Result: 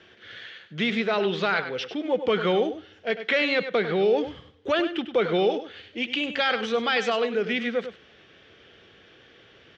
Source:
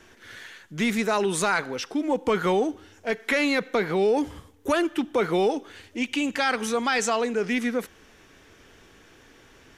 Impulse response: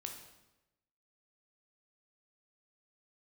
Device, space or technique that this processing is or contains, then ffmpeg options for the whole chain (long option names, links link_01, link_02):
guitar cabinet: -filter_complex "[0:a]asettb=1/sr,asplit=3[link_01][link_02][link_03];[link_01]atrim=end=0.994[link_04];[link_02]atrim=start=0.99:end=1.7,asetpts=PTS-STARTPTS,afade=type=in:duration=0.004:curve=qsin,afade=type=out:start_time=0.706:duration=0.004:curve=qsin,lowpass=frequency=5500:width=0.5412,lowpass=frequency=5500:width=1.3066[link_05];[link_03]atrim=start=1.696[link_06];[link_04][link_05]acrossfade=duration=0.004:curve1=hsin:curve2=qsin[link_07];[link_07][link_06]acrossfade=duration=0.004:curve1=qsin:curve2=hsin,highpass=93,equalizer=frequency=270:width_type=q:width=4:gain=-7,equalizer=frequency=520:width_type=q:width=4:gain=3,equalizer=frequency=960:width_type=q:width=4:gain=-8,equalizer=frequency=3200:width_type=q:width=4:gain=7,lowpass=frequency=4400:width=0.5412,lowpass=frequency=4400:width=1.3066,aecho=1:1:99:0.282"